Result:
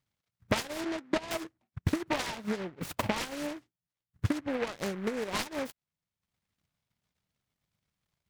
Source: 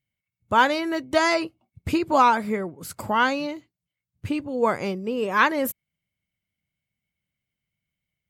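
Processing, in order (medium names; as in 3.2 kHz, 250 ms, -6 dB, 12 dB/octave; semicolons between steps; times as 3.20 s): self-modulated delay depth 0.41 ms; compression 16:1, threshold -31 dBFS, peak gain reduction 18.5 dB; 0.84–1.31 s: Chebyshev band-pass 150–2400 Hz, order 5; transient shaper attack +8 dB, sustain -8 dB; delay time shaken by noise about 1.3 kHz, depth 0.12 ms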